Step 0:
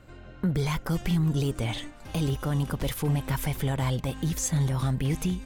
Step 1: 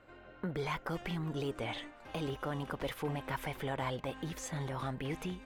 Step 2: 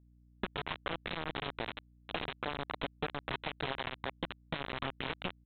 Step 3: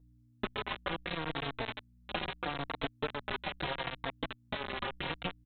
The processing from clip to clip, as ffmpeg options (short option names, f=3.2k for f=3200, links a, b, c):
-af "bass=f=250:g=-14,treble=f=4k:g=-14,volume=-2.5dB"
-af "acompressor=threshold=-45dB:ratio=10,aresample=8000,acrusher=bits=6:mix=0:aa=0.000001,aresample=44100,aeval=exprs='val(0)+0.000251*(sin(2*PI*60*n/s)+sin(2*PI*2*60*n/s)/2+sin(2*PI*3*60*n/s)/3+sin(2*PI*4*60*n/s)/4+sin(2*PI*5*60*n/s)/5)':c=same,volume=10.5dB"
-filter_complex "[0:a]asplit=2[a][b];[b]adelay=3.9,afreqshift=-0.75[c];[a][c]amix=inputs=2:normalize=1,volume=4.5dB"